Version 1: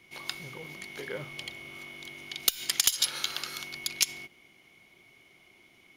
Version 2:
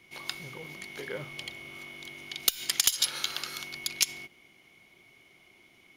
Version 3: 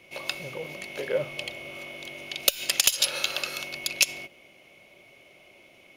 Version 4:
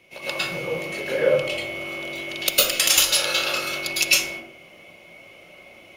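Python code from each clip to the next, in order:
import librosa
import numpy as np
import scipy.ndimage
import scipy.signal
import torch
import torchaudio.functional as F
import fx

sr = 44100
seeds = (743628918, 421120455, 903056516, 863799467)

y1 = x
y2 = fx.small_body(y1, sr, hz=(570.0, 2600.0), ring_ms=30, db=16)
y2 = F.gain(torch.from_numpy(y2), 2.5).numpy()
y3 = fx.rev_plate(y2, sr, seeds[0], rt60_s=0.59, hf_ratio=0.5, predelay_ms=95, drr_db=-9.5)
y3 = F.gain(torch.from_numpy(y3), -2.0).numpy()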